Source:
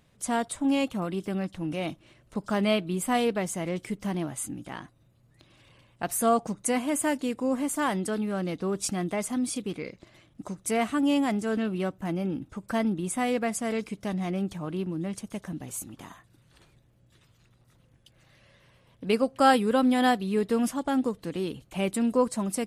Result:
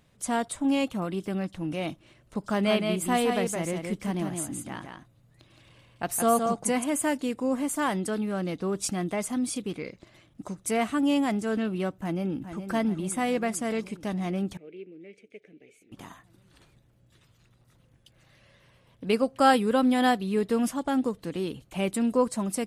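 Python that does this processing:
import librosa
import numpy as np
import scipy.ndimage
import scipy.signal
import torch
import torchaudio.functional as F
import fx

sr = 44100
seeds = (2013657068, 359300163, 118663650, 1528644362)

y = fx.echo_single(x, sr, ms=168, db=-5.0, at=(2.65, 6.83), fade=0.02)
y = fx.echo_throw(y, sr, start_s=11.9, length_s=0.8, ms=420, feedback_pct=70, wet_db=-9.5)
y = fx.double_bandpass(y, sr, hz=1000.0, octaves=2.4, at=(14.57, 15.92))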